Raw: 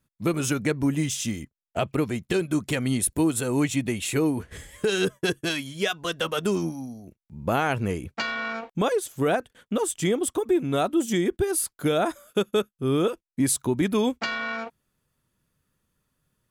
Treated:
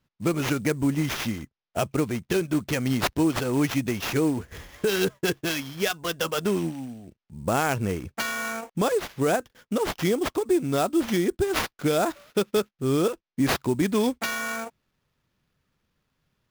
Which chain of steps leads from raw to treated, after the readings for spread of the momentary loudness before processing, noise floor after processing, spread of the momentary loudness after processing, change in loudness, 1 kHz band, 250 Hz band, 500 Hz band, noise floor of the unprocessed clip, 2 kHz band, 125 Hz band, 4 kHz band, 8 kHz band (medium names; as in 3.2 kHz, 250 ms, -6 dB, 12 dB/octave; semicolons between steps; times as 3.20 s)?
7 LU, -84 dBFS, 7 LU, 0.0 dB, +0.5 dB, 0.0 dB, 0.0 dB, -84 dBFS, +0.5 dB, 0.0 dB, 0.0 dB, -4.5 dB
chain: sample-rate reducer 8.6 kHz, jitter 20%